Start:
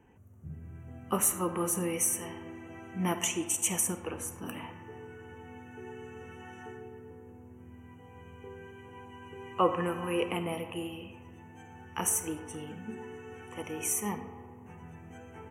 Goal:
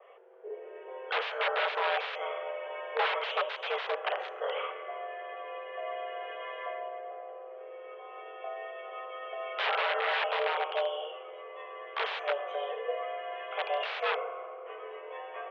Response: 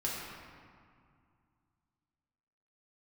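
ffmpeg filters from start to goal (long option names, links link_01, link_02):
-filter_complex "[0:a]asplit=2[link_01][link_02];[link_02]alimiter=limit=-20.5dB:level=0:latency=1:release=391,volume=3dB[link_03];[link_01][link_03]amix=inputs=2:normalize=0,aeval=exprs='(mod(11.9*val(0)+1,2)-1)/11.9':channel_layout=same,highpass=frequency=160:width_type=q:width=0.5412,highpass=frequency=160:width_type=q:width=1.307,lowpass=frequency=3200:width_type=q:width=0.5176,lowpass=frequency=3200:width_type=q:width=0.7071,lowpass=frequency=3200:width_type=q:width=1.932,afreqshift=270,adynamicequalizer=threshold=0.01:dfrequency=2700:dqfactor=0.7:tfrequency=2700:tqfactor=0.7:attack=5:release=100:ratio=0.375:range=2:mode=cutabove:tftype=highshelf"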